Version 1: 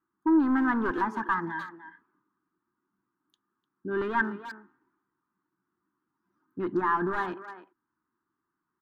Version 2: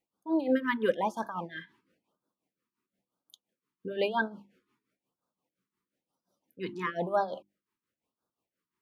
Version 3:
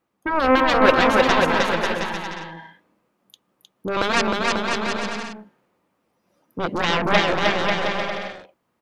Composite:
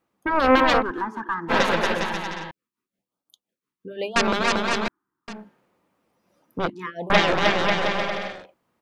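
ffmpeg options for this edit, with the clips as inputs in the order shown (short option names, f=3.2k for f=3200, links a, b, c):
-filter_complex "[0:a]asplit=2[a][b];[1:a]asplit=2[c][d];[2:a]asplit=5[e][f][g][h][i];[e]atrim=end=0.83[j];[a]atrim=start=0.79:end=1.52[k];[f]atrim=start=1.48:end=2.512[l];[c]atrim=start=2.508:end=4.162[m];[g]atrim=start=4.158:end=4.882[n];[b]atrim=start=4.878:end=5.282[o];[h]atrim=start=5.278:end=6.702[p];[d]atrim=start=6.698:end=7.102[q];[i]atrim=start=7.098[r];[j][k]acrossfade=d=0.04:c1=tri:c2=tri[s];[s][l]acrossfade=d=0.04:c1=tri:c2=tri[t];[t][m]acrossfade=d=0.004:c1=hsin:c2=hsin[u];[u][n]acrossfade=d=0.004:c1=hsin:c2=hsin[v];[v][o]acrossfade=d=0.004:c1=hsin:c2=hsin[w];[w][p]acrossfade=d=0.004:c1=hsin:c2=hsin[x];[x][q]acrossfade=d=0.004:c1=hsin:c2=hsin[y];[y][r]acrossfade=d=0.004:c1=hsin:c2=hsin"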